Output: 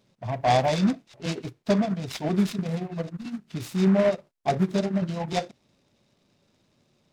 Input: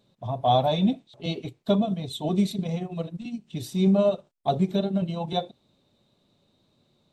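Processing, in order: delay time shaken by noise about 1.2 kHz, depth 0.05 ms

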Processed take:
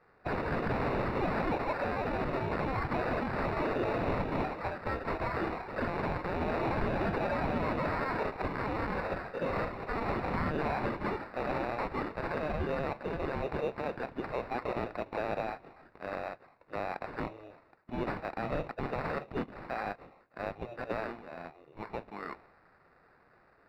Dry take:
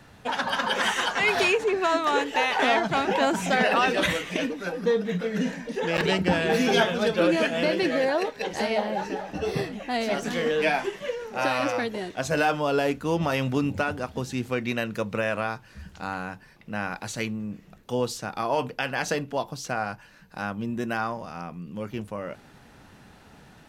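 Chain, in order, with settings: level-controlled noise filter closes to 1 kHz, open at -20.5 dBFS; high-pass 360 Hz 12 dB/octave; spectral gate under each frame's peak -10 dB weak; resonant high shelf 1.7 kHz +12.5 dB, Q 1.5; peak limiter -20.5 dBFS, peak gain reduction 19 dB; sample-rate reducer 3.2 kHz, jitter 0%; distance through air 410 m

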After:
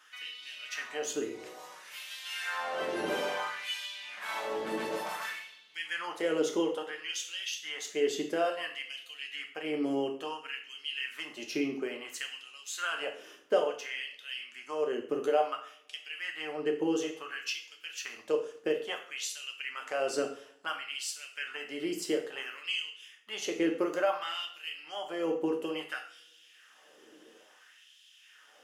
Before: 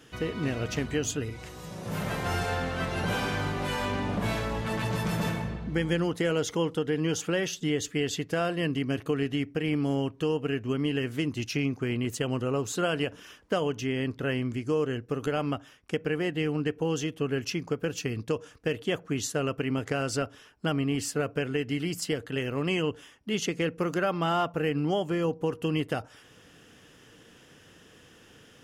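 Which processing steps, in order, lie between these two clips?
LFO high-pass sine 0.58 Hz 340–3400 Hz; two-slope reverb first 0.47 s, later 1.8 s, from -28 dB, DRR 2.5 dB; trim -6.5 dB

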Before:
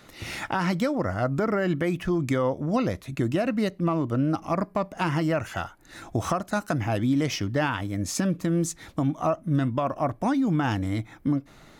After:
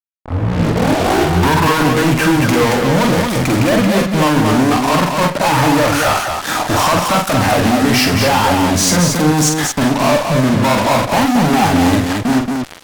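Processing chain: tape start-up on the opening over 1.81 s; Bessel high-pass 160 Hz, order 8; peaking EQ 960 Hz +8 dB 0.76 oct; in parallel at -1.5 dB: compression, threshold -31 dBFS, peak gain reduction 14 dB; on the sum: fuzz box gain 42 dB, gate -38 dBFS; on a send: multi-tap echo 42/115/209 ms -4.5/-15.5/-4 dB; on the sum: speed mistake 48 kHz file played as 44.1 kHz

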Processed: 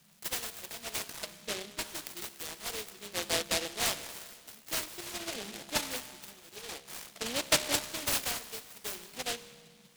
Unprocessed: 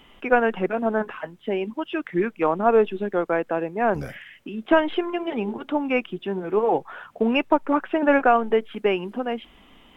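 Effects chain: band noise 140–220 Hz -39 dBFS; LFO band-pass sine 0.5 Hz 670–2800 Hz; band-stop 390 Hz, Q 12; feedback comb 68 Hz, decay 1.7 s, harmonics all, mix 70%; delay time shaken by noise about 3.1 kHz, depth 0.32 ms; trim +6 dB

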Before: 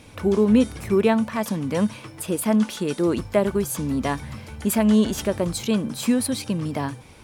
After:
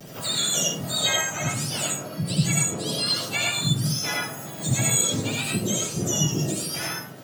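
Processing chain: spectrum inverted on a logarithmic axis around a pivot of 1.2 kHz; harmony voices +3 st -5 dB, +12 st -16 dB; vibrato 0.49 Hz 29 cents; reverberation RT60 0.50 s, pre-delay 40 ms, DRR -3.5 dB; three bands compressed up and down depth 40%; trim -5.5 dB

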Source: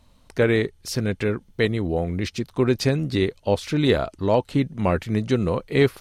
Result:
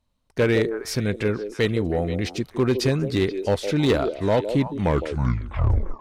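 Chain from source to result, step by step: tape stop on the ending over 1.26 s; gate -44 dBFS, range -17 dB; on a send: repeats whose band climbs or falls 160 ms, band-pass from 420 Hz, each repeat 1.4 oct, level -6 dB; on the sum: overload inside the chain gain 13.5 dB

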